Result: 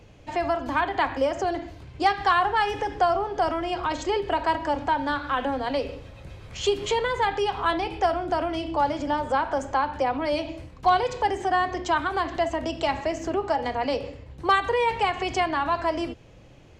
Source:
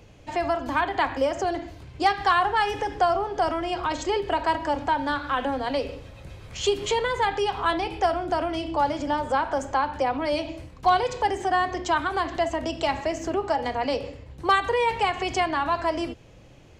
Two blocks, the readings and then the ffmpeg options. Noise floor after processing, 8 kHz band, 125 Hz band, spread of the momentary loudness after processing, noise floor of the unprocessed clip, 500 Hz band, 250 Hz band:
-49 dBFS, -2.5 dB, 0.0 dB, 7 LU, -49 dBFS, 0.0 dB, 0.0 dB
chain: -af "highshelf=f=7500:g=-6"

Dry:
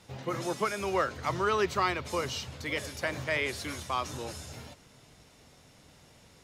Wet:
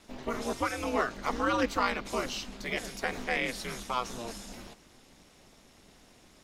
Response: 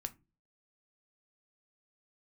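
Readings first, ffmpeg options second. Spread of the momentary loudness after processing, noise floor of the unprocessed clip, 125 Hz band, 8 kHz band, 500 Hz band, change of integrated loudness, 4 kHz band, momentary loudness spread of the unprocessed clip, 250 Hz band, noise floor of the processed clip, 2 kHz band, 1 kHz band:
12 LU, -58 dBFS, -6.5 dB, -0.5 dB, -2.0 dB, -0.5 dB, -0.5 dB, 12 LU, +2.5 dB, -59 dBFS, 0.0 dB, -0.5 dB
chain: -af "aeval=exprs='val(0)*sin(2*PI*120*n/s)':c=same,volume=1.33"

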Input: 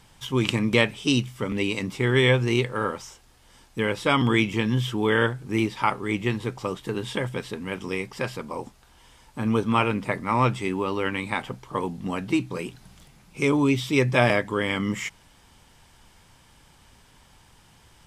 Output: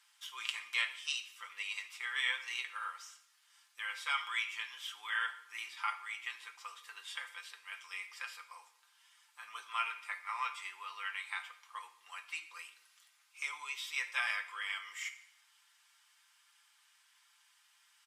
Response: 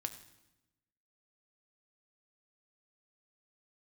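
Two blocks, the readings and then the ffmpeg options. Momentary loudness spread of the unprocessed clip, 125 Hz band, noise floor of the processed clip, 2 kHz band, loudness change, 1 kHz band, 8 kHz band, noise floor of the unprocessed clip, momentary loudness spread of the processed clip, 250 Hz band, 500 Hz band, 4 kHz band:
12 LU, under -40 dB, -70 dBFS, -9.0 dB, -14.0 dB, -14.0 dB, -9.0 dB, -56 dBFS, 15 LU, under -40 dB, -40.0 dB, -9.5 dB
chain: -filter_complex "[0:a]highpass=f=1200:w=0.5412,highpass=f=1200:w=1.3066,aecho=1:1:5.8:0.51[s0];[1:a]atrim=start_sample=2205,asetrate=57330,aresample=44100[s1];[s0][s1]afir=irnorm=-1:irlink=0,volume=0.473"

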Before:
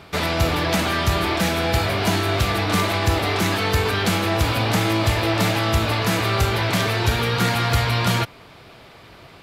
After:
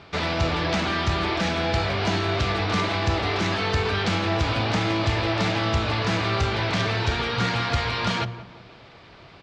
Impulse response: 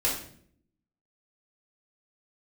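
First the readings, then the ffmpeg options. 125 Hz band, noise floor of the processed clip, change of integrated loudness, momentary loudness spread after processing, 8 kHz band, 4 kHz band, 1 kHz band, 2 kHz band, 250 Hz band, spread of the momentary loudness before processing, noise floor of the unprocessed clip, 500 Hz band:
-4.0 dB, -48 dBFS, -3.5 dB, 1 LU, -10.0 dB, -3.5 dB, -3.0 dB, -3.0 dB, -3.5 dB, 1 LU, -46 dBFS, -3.5 dB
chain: -filter_complex "[0:a]lowpass=f=5900:w=0.5412,lowpass=f=5900:w=1.3066,bandreject=f=58.84:t=h:w=4,bandreject=f=117.68:t=h:w=4,bandreject=f=176.52:t=h:w=4,bandreject=f=235.36:t=h:w=4,bandreject=f=294.2:t=h:w=4,bandreject=f=353.04:t=h:w=4,bandreject=f=411.88:t=h:w=4,bandreject=f=470.72:t=h:w=4,bandreject=f=529.56:t=h:w=4,bandreject=f=588.4:t=h:w=4,bandreject=f=647.24:t=h:w=4,bandreject=f=706.08:t=h:w=4,acontrast=43,asplit=2[s0][s1];[s1]adelay=175,lowpass=f=1500:p=1,volume=0.188,asplit=2[s2][s3];[s3]adelay=175,lowpass=f=1500:p=1,volume=0.49,asplit=2[s4][s5];[s5]adelay=175,lowpass=f=1500:p=1,volume=0.49,asplit=2[s6][s7];[s7]adelay=175,lowpass=f=1500:p=1,volume=0.49,asplit=2[s8][s9];[s9]adelay=175,lowpass=f=1500:p=1,volume=0.49[s10];[s2][s4][s6][s8][s10]amix=inputs=5:normalize=0[s11];[s0][s11]amix=inputs=2:normalize=0,volume=0.376"

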